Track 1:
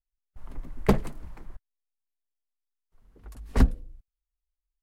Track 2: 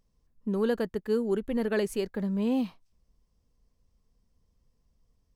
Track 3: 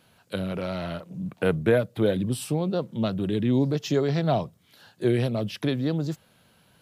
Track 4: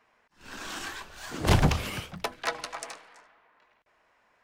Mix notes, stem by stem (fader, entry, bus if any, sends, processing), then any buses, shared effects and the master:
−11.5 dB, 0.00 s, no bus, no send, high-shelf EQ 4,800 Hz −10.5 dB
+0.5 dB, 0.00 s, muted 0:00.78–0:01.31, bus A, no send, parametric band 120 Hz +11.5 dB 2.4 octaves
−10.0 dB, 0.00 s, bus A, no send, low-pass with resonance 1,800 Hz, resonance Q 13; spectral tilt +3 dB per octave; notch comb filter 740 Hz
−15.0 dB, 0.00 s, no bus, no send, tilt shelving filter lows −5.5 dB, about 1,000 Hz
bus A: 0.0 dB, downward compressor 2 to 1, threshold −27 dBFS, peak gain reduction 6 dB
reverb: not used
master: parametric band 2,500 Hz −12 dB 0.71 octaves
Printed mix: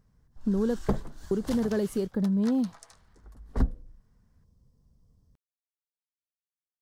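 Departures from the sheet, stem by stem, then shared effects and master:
stem 1 −11.5 dB → −5.5 dB
stem 3: muted

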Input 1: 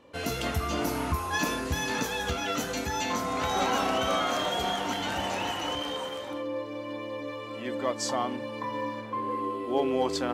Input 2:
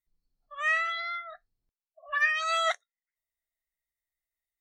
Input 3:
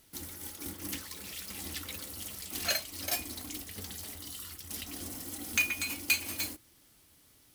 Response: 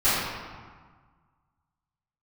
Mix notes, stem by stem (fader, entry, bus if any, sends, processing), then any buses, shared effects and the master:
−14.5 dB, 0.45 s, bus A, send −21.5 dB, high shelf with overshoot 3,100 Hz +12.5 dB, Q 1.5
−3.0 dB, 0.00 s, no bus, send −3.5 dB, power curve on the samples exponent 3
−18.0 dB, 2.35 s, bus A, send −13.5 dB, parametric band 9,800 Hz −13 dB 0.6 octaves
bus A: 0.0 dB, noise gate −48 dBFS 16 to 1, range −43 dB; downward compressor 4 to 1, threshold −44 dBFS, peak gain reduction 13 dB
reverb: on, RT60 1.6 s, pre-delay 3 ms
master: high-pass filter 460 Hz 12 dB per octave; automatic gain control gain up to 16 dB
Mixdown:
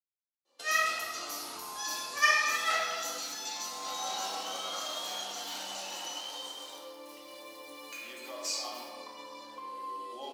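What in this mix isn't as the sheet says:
stem 1 −14.5 dB → −7.5 dB
stem 3: missing parametric band 9,800 Hz −13 dB 0.6 octaves
master: missing automatic gain control gain up to 16 dB

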